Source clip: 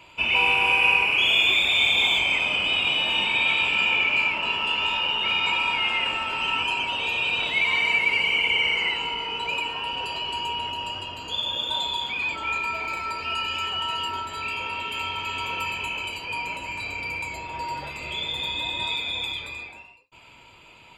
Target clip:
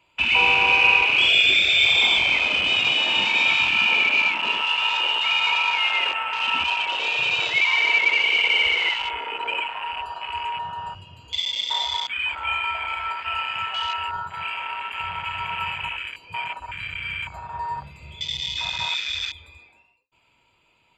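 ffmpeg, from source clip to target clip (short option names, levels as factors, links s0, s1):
-af "afwtdn=0.0355,volume=1.41"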